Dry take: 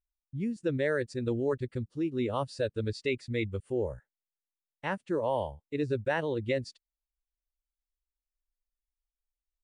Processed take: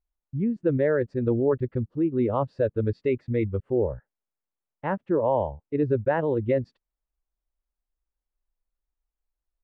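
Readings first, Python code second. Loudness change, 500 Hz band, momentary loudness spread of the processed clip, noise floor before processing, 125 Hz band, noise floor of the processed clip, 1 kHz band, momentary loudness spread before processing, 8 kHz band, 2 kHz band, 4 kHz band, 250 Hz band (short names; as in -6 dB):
+6.5 dB, +7.0 dB, 7 LU, under -85 dBFS, +7.0 dB, under -85 dBFS, +5.5 dB, 6 LU, n/a, -1.0 dB, under -10 dB, +7.0 dB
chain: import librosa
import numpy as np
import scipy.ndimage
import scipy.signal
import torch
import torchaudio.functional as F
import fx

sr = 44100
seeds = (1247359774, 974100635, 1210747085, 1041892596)

y = scipy.signal.sosfilt(scipy.signal.butter(2, 1200.0, 'lowpass', fs=sr, output='sos'), x)
y = F.gain(torch.from_numpy(y), 7.0).numpy()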